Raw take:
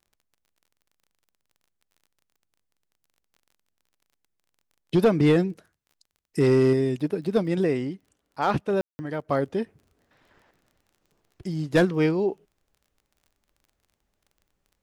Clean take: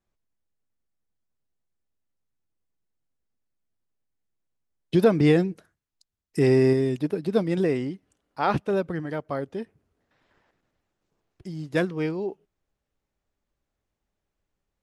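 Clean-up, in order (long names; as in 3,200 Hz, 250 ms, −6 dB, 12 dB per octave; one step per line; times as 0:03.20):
clipped peaks rebuilt −12.5 dBFS
click removal
ambience match 0:08.81–0:08.99
level correction −5.5 dB, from 0:09.28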